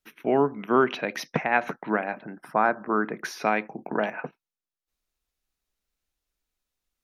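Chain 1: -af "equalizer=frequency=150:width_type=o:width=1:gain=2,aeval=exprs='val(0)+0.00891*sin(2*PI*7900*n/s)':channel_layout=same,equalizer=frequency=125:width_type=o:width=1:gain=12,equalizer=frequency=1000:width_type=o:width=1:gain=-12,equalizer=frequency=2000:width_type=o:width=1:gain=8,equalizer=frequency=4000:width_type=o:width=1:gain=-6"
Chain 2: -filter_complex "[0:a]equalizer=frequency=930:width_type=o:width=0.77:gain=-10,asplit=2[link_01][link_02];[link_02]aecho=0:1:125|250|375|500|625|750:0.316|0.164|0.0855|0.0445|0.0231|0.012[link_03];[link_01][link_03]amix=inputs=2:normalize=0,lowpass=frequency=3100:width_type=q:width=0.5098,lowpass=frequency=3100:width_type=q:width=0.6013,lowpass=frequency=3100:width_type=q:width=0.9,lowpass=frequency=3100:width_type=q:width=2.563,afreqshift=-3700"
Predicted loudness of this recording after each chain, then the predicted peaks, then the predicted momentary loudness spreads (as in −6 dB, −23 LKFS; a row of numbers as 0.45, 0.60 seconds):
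−26.5, −25.0 LKFS; −7.0, −10.0 dBFS; 18, 10 LU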